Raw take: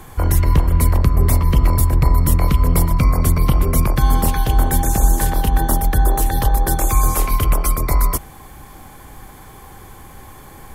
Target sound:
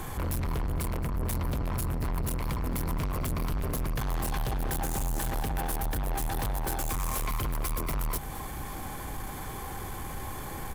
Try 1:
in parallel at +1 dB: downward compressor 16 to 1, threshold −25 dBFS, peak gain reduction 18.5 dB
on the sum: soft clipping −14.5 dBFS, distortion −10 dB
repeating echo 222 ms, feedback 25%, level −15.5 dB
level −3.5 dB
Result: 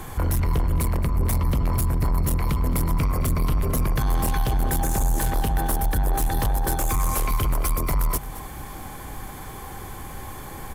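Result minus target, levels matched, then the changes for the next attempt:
soft clipping: distortion −5 dB
change: soft clipping −25 dBFS, distortion −5 dB

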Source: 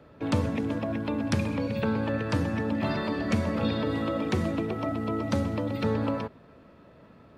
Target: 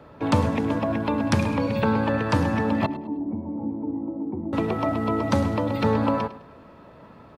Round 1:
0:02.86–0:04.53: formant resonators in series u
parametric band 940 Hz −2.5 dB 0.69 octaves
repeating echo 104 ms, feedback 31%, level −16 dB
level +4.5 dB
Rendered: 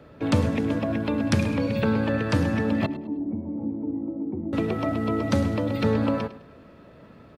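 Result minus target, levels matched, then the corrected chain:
1,000 Hz band −6.0 dB
0:02.86–0:04.53: formant resonators in series u
parametric band 940 Hz +7 dB 0.69 octaves
repeating echo 104 ms, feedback 31%, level −16 dB
level +4.5 dB

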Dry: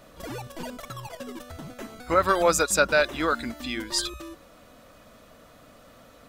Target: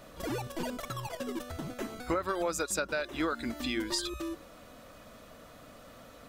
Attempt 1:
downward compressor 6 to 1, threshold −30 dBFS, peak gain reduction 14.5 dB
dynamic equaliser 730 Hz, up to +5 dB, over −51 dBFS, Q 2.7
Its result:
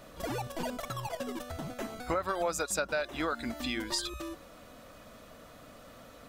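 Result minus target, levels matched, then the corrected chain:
250 Hz band −2.5 dB
downward compressor 6 to 1, threshold −30 dBFS, peak gain reduction 14.5 dB
dynamic equaliser 350 Hz, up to +5 dB, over −51 dBFS, Q 2.7

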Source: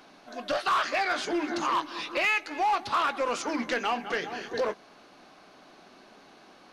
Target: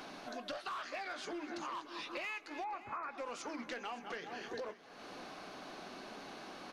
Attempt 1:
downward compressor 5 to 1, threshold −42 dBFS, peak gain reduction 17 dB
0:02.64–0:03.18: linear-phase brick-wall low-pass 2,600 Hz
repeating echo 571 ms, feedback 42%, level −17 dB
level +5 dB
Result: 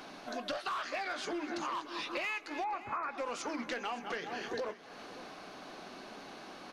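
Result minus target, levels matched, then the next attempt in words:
downward compressor: peak gain reduction −5 dB
downward compressor 5 to 1, threshold −48.5 dBFS, peak gain reduction 22.5 dB
0:02.64–0:03.18: linear-phase brick-wall low-pass 2,600 Hz
repeating echo 571 ms, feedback 42%, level −17 dB
level +5 dB

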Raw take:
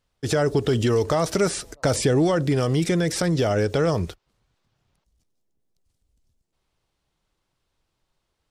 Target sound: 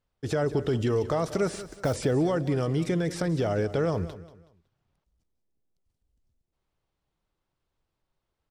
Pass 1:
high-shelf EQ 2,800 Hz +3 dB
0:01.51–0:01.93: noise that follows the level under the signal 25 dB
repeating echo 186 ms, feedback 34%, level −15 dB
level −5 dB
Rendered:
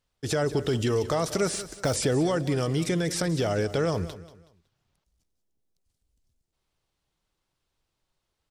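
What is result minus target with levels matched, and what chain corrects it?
4,000 Hz band +6.5 dB
high-shelf EQ 2,800 Hz −8 dB
0:01.51–0:01.93: noise that follows the level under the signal 25 dB
repeating echo 186 ms, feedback 34%, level −15 dB
level −5 dB

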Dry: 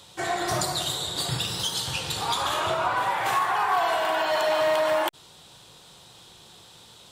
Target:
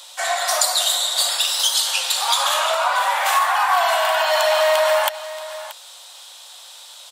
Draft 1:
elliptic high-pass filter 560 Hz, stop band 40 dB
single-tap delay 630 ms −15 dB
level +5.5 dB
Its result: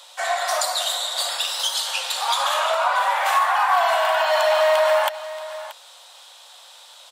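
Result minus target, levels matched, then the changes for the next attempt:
8,000 Hz band −5.0 dB
add after elliptic high-pass filter: high-shelf EQ 3,400 Hz +8.5 dB

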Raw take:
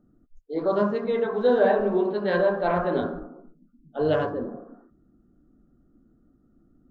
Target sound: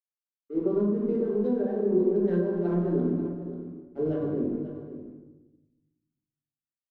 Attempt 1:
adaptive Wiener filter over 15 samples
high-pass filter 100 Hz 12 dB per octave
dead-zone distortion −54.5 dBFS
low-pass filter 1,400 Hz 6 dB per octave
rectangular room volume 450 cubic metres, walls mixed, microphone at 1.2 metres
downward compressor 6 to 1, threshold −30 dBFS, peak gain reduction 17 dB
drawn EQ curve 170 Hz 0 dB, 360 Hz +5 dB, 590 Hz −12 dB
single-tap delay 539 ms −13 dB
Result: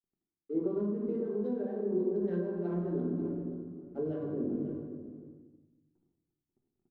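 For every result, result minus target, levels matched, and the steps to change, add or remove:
downward compressor: peak gain reduction +7.5 dB; dead-zone distortion: distortion −9 dB
change: downward compressor 6 to 1, threshold −21 dBFS, peak gain reduction 9.5 dB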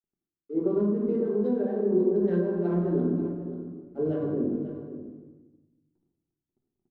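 dead-zone distortion: distortion −9 dB
change: dead-zone distortion −43.5 dBFS

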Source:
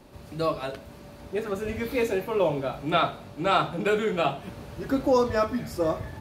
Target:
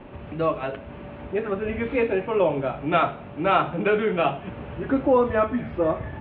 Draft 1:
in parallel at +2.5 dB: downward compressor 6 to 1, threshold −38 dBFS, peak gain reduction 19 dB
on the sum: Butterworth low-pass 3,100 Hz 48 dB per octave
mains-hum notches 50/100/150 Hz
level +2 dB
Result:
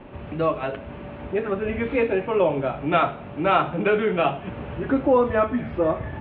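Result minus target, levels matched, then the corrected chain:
downward compressor: peak gain reduction −6 dB
in parallel at +2.5 dB: downward compressor 6 to 1, threshold −45.5 dBFS, peak gain reduction 25.5 dB
on the sum: Butterworth low-pass 3,100 Hz 48 dB per octave
mains-hum notches 50/100/150 Hz
level +2 dB

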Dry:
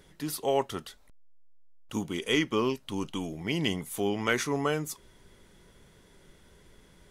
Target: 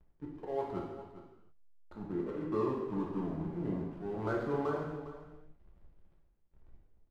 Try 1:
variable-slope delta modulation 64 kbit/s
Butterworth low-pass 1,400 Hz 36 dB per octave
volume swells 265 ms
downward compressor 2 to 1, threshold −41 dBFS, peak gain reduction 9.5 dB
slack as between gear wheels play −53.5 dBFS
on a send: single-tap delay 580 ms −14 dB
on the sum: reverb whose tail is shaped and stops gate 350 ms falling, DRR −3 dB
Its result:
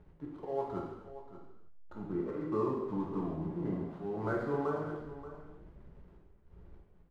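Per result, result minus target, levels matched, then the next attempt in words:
echo 175 ms late; slack as between gear wheels: distortion −7 dB
variable-slope delta modulation 64 kbit/s
Butterworth low-pass 1,400 Hz 36 dB per octave
volume swells 265 ms
downward compressor 2 to 1, threshold −41 dBFS, peak gain reduction 9.5 dB
slack as between gear wheels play −53.5 dBFS
on a send: single-tap delay 405 ms −14 dB
on the sum: reverb whose tail is shaped and stops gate 350 ms falling, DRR −3 dB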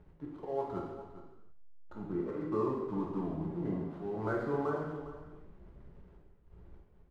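slack as between gear wheels: distortion −7 dB
variable-slope delta modulation 64 kbit/s
Butterworth low-pass 1,400 Hz 36 dB per octave
volume swells 265 ms
downward compressor 2 to 1, threshold −41 dBFS, peak gain reduction 9.5 dB
slack as between gear wheels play −45.5 dBFS
on a send: single-tap delay 405 ms −14 dB
on the sum: reverb whose tail is shaped and stops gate 350 ms falling, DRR −3 dB

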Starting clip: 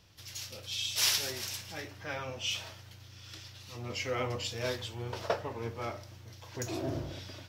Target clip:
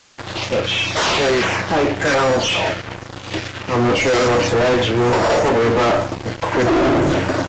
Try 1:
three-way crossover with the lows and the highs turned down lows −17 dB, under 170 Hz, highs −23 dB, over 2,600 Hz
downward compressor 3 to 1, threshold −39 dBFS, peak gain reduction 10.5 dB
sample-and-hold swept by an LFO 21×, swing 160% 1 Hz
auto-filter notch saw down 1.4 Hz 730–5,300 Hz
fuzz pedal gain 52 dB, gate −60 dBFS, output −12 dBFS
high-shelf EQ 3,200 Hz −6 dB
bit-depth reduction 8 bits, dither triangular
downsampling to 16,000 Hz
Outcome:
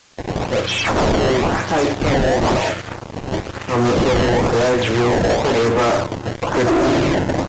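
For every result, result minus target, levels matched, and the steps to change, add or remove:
downward compressor: peak gain reduction +10.5 dB; sample-and-hold swept by an LFO: distortion +12 dB
remove: downward compressor 3 to 1, threshold −39 dBFS, peak gain reduction 10.5 dB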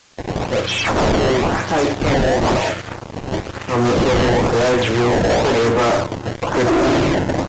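sample-and-hold swept by an LFO: distortion +13 dB
change: sample-and-hold swept by an LFO 4×, swing 160% 1 Hz

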